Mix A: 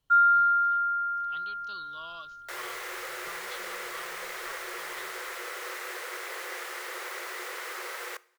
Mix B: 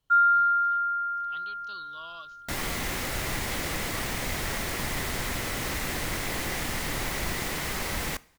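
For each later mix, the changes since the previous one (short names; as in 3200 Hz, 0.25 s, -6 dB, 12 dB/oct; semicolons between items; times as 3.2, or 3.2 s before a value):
second sound: remove rippled Chebyshev high-pass 350 Hz, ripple 9 dB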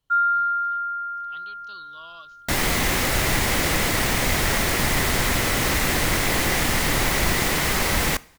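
second sound +9.5 dB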